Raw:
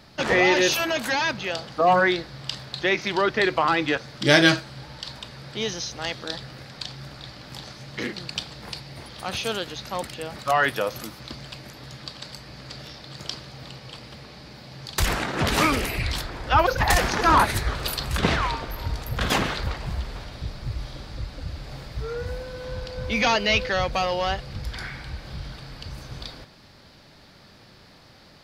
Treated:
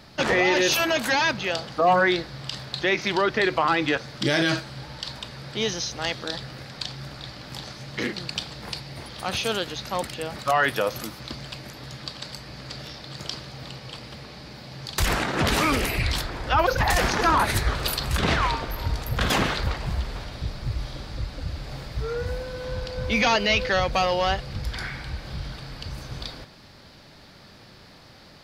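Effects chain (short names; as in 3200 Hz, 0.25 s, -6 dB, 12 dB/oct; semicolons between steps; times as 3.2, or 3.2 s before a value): limiter -14 dBFS, peak gain reduction 10 dB; gain +2 dB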